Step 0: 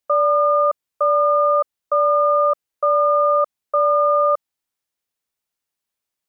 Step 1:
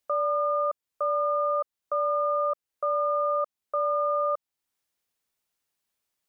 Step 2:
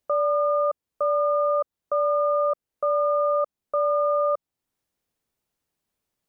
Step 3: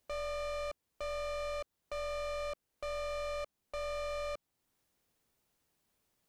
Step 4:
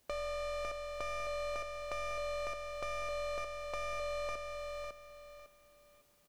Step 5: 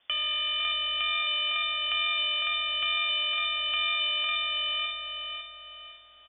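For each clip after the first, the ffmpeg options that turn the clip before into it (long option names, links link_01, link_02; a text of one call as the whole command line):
ffmpeg -i in.wav -af "alimiter=limit=-21dB:level=0:latency=1:release=447,volume=1.5dB" out.wav
ffmpeg -i in.wav -af "tiltshelf=frequency=710:gain=6,volume=4dB" out.wav
ffmpeg -i in.wav -af "alimiter=level_in=0.5dB:limit=-24dB:level=0:latency=1:release=11,volume=-0.5dB,aeval=exprs='(tanh(112*val(0)+0.3)-tanh(0.3))/112':channel_layout=same,volume=4dB" out.wav
ffmpeg -i in.wav -filter_complex "[0:a]acompressor=threshold=-46dB:ratio=3,asplit=2[link_01][link_02];[link_02]aecho=0:1:553|1106|1659|2212:0.631|0.177|0.0495|0.0139[link_03];[link_01][link_03]amix=inputs=2:normalize=0,volume=6.5dB" out.wav
ffmpeg -i in.wav -filter_complex "[0:a]lowpass=frequency=3100:width_type=q:width=0.5098,lowpass=frequency=3100:width_type=q:width=0.6013,lowpass=frequency=3100:width_type=q:width=0.9,lowpass=frequency=3100:width_type=q:width=2.563,afreqshift=-3600,asplit=2[link_01][link_02];[link_02]adelay=505,lowpass=frequency=1800:poles=1,volume=-3.5dB,asplit=2[link_03][link_04];[link_04]adelay=505,lowpass=frequency=1800:poles=1,volume=0.46,asplit=2[link_05][link_06];[link_06]adelay=505,lowpass=frequency=1800:poles=1,volume=0.46,asplit=2[link_07][link_08];[link_08]adelay=505,lowpass=frequency=1800:poles=1,volume=0.46,asplit=2[link_09][link_10];[link_10]adelay=505,lowpass=frequency=1800:poles=1,volume=0.46,asplit=2[link_11][link_12];[link_12]adelay=505,lowpass=frequency=1800:poles=1,volume=0.46[link_13];[link_01][link_03][link_05][link_07][link_09][link_11][link_13]amix=inputs=7:normalize=0,volume=9dB" out.wav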